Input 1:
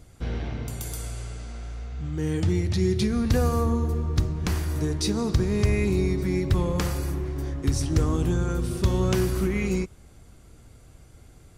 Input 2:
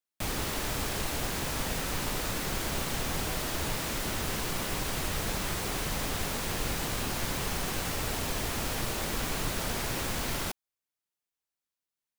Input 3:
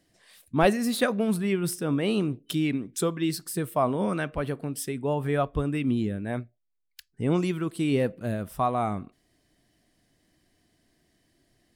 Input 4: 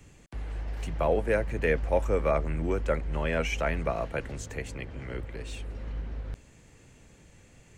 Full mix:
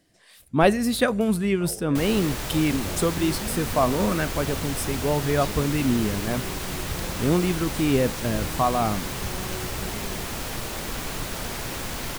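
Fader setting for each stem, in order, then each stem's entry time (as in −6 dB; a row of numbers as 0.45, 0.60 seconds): −13.0, +1.0, +3.0, −16.5 decibels; 0.40, 1.75, 0.00, 0.60 seconds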